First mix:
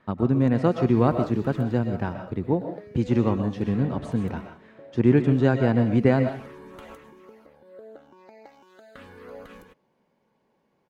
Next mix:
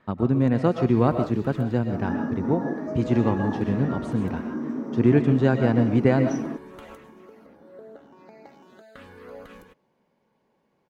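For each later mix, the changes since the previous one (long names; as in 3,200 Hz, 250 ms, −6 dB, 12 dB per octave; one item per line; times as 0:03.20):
second sound: unmuted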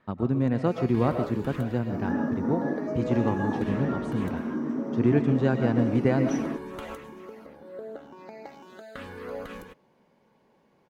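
speech −4.0 dB
first sound +5.5 dB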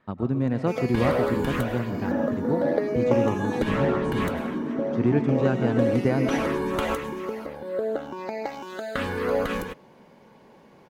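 first sound +12.0 dB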